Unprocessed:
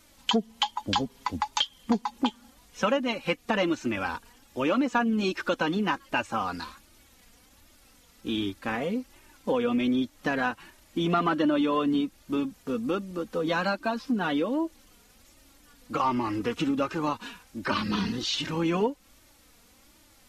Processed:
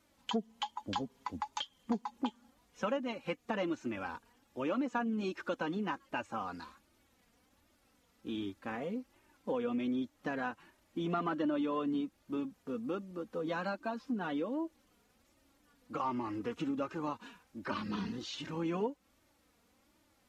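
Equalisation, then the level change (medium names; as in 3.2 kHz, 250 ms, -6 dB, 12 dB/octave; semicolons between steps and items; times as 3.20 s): dynamic bell 6.8 kHz, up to +4 dB, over -59 dBFS, Q 3.4; high-pass 100 Hz 6 dB/octave; treble shelf 2.3 kHz -9 dB; -8.0 dB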